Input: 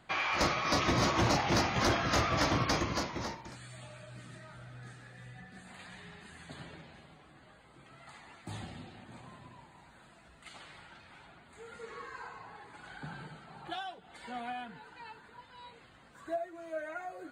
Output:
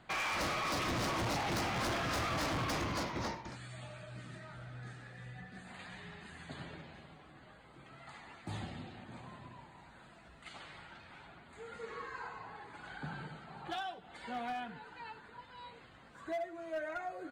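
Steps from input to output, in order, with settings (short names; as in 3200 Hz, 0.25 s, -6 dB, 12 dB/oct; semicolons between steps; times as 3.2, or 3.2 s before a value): high shelf 8700 Hz -11.5 dB; hard clip -34.5 dBFS, distortion -6 dB; on a send: echo 96 ms -19.5 dB; on the sum: gain +1 dB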